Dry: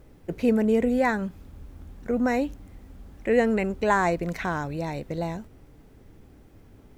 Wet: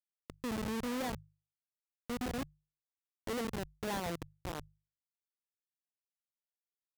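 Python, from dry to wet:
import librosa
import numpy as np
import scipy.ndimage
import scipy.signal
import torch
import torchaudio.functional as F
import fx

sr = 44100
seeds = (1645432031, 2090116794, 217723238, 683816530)

y = fx.schmitt(x, sr, flips_db=-21.0)
y = fx.highpass(y, sr, hz=73.0, slope=6)
y = fx.hum_notches(y, sr, base_hz=50, count=3)
y = F.gain(torch.from_numpy(y), -8.0).numpy()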